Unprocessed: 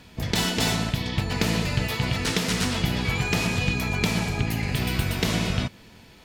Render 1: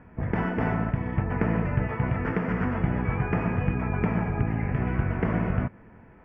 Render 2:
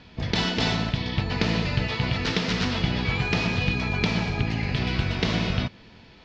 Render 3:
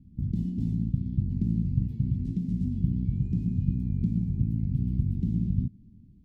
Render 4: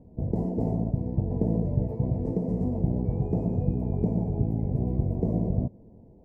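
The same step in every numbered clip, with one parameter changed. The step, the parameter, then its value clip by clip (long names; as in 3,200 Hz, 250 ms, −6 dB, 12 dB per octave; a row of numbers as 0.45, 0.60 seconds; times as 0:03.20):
inverse Chebyshev low-pass filter, stop band from: 3,600, 9,300, 500, 1,300 Hertz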